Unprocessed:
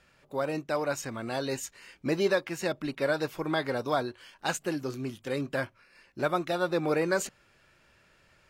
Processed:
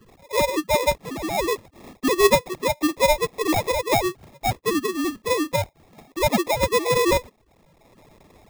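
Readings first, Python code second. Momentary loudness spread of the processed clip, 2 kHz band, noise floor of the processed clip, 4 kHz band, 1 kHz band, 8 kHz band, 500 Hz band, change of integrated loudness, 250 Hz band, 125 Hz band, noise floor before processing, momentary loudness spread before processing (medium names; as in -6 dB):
8 LU, +6.5 dB, -60 dBFS, +11.0 dB, +10.5 dB, +10.0 dB, +8.0 dB, +8.5 dB, +7.0 dB, +6.0 dB, -64 dBFS, 10 LU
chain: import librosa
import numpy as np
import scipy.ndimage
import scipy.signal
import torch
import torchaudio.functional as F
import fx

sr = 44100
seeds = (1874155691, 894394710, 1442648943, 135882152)

y = fx.sine_speech(x, sr)
y = fx.sample_hold(y, sr, seeds[0], rate_hz=1500.0, jitter_pct=0)
y = fx.band_squash(y, sr, depth_pct=40)
y = y * 10.0 ** (8.5 / 20.0)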